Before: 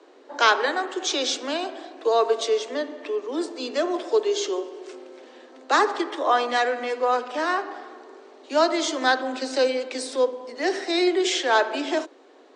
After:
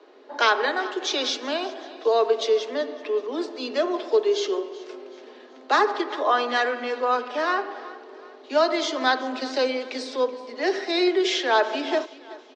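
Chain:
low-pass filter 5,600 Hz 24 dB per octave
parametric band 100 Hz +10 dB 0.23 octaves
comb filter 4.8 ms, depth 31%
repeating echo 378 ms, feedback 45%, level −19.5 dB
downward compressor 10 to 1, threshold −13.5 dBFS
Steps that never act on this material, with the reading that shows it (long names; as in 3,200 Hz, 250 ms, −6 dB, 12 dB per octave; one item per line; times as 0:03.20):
parametric band 100 Hz: nothing at its input below 230 Hz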